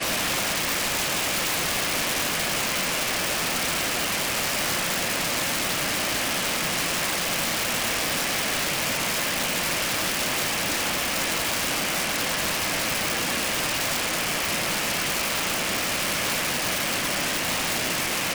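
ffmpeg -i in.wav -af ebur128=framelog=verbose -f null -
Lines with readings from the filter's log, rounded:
Integrated loudness:
  I:         -23.5 LUFS
  Threshold: -33.5 LUFS
Loudness range:
  LRA:         0.4 LU
  Threshold: -43.5 LUFS
  LRA low:   -23.6 LUFS
  LRA high:  -23.3 LUFS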